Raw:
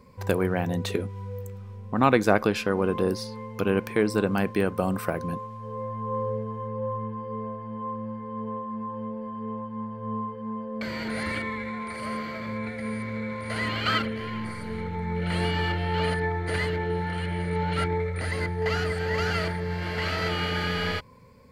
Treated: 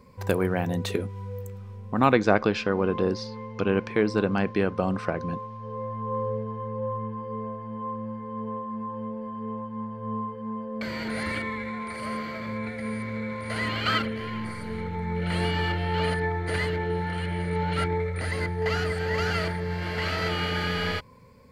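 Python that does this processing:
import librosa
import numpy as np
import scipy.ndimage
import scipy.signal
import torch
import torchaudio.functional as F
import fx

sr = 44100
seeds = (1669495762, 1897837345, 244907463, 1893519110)

y = fx.lowpass(x, sr, hz=5900.0, slope=24, at=(2.12, 7.22))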